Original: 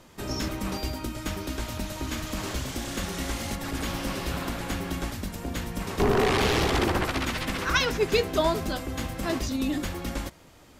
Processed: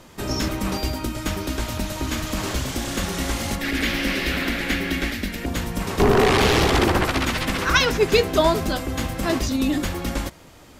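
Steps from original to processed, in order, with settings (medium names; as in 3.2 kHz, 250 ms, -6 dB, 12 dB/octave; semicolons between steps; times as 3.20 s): 3.61–5.46 s: graphic EQ 125/250/1000/2000/4000/8000 Hz -10/+5/-9/+11/+3/-5 dB; trim +6 dB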